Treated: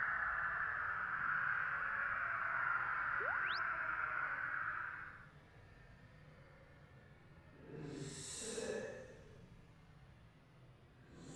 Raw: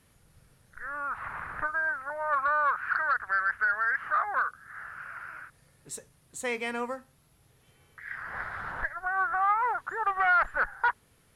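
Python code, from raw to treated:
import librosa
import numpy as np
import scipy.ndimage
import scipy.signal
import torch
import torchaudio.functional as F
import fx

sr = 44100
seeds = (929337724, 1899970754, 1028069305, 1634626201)

y = fx.env_lowpass(x, sr, base_hz=2400.0, full_db=-24.5)
y = fx.paulstretch(y, sr, seeds[0], factor=7.4, window_s=0.1, from_s=4.81)
y = fx.spec_paint(y, sr, seeds[1], shape='rise', start_s=3.2, length_s=0.39, low_hz=360.0, high_hz=5600.0, level_db=-51.0)
y = y * 10.0 ** (2.5 / 20.0)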